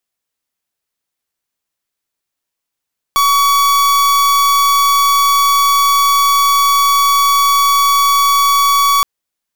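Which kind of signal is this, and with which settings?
pulse 1.13 kHz, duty 44% -11 dBFS 5.87 s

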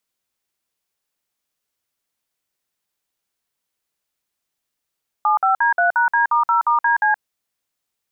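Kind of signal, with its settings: DTMF "75D3#D*0*DC", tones 123 ms, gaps 54 ms, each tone -16 dBFS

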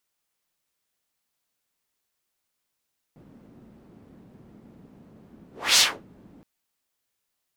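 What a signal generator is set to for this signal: whoosh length 3.27 s, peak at 2.62 s, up 0.28 s, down 0.27 s, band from 220 Hz, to 5 kHz, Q 1.6, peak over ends 35 dB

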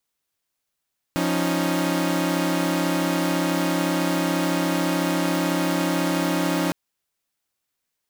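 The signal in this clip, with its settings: chord F3/C#4/D#4 saw, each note -22.5 dBFS 5.56 s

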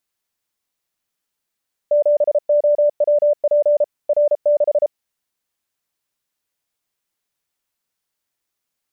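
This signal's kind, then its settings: Morse "7OWP R6" 33 wpm 589 Hz -11 dBFS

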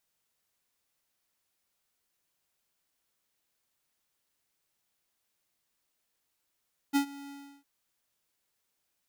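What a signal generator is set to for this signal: ADSR square 281 Hz, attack 30 ms, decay 93 ms, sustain -21 dB, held 0.36 s, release 347 ms -23.5 dBFS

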